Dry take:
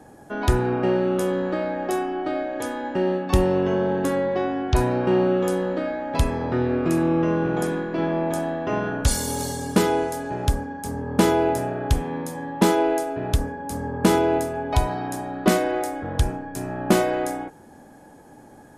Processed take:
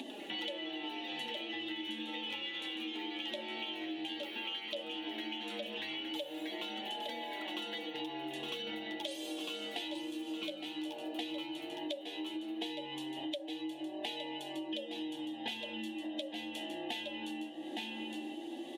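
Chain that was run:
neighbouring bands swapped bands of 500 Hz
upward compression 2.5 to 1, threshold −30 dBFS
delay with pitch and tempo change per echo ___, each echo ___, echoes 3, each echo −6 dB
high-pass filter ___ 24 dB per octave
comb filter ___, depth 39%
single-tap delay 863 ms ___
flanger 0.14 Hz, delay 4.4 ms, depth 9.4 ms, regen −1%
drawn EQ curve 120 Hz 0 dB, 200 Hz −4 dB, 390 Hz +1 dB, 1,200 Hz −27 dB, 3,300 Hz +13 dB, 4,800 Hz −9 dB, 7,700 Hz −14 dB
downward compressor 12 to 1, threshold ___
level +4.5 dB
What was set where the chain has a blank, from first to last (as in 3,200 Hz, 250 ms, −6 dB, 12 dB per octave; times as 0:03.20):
99 ms, +7 semitones, 260 Hz, 3.6 ms, −8.5 dB, −42 dBFS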